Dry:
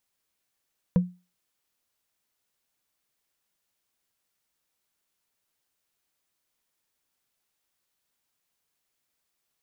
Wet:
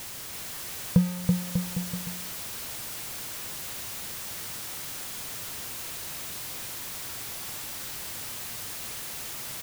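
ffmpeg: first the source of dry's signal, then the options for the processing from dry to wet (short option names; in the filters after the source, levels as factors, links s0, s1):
-f lavfi -i "aevalsrc='0.211*pow(10,-3*t/0.29)*sin(2*PI*179*t)+0.0668*pow(10,-3*t/0.086)*sin(2*PI*493.5*t)+0.0211*pow(10,-3*t/0.038)*sin(2*PI*967.3*t)+0.00668*pow(10,-3*t/0.021)*sin(2*PI*1599*t)+0.00211*pow(10,-3*t/0.013)*sin(2*PI*2387.9*t)':d=0.45:s=44100"
-filter_complex "[0:a]aeval=exprs='val(0)+0.5*0.0224*sgn(val(0))':c=same,equalizer=f=110:t=o:w=1.2:g=7.5,asplit=2[s0][s1];[s1]aecho=0:1:330|594|805.2|974.2|1109:0.631|0.398|0.251|0.158|0.1[s2];[s0][s2]amix=inputs=2:normalize=0"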